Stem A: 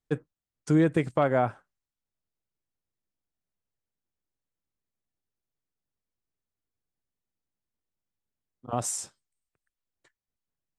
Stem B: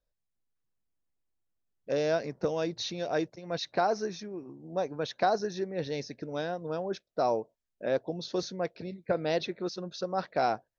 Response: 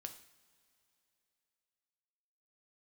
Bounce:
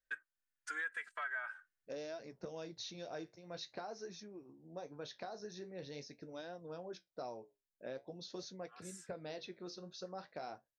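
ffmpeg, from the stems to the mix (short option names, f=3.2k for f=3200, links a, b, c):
-filter_complex "[0:a]highpass=f=1.6k:t=q:w=6.7,asplit=2[a][b];[b]adelay=2.7,afreqshift=-0.75[c];[a][c]amix=inputs=2:normalize=1,volume=-4.5dB[d];[1:a]highshelf=f=4.1k:g=7,acompressor=threshold=-29dB:ratio=4,flanger=delay=8.9:depth=9.9:regen=-56:speed=0.46:shape=triangular,volume=-8.5dB,asplit=2[e][f];[f]apad=whole_len=475803[g];[d][g]sidechaincompress=threshold=-57dB:ratio=12:attack=16:release=997[h];[h][e]amix=inputs=2:normalize=0,alimiter=level_in=8dB:limit=-24dB:level=0:latency=1:release=273,volume=-8dB"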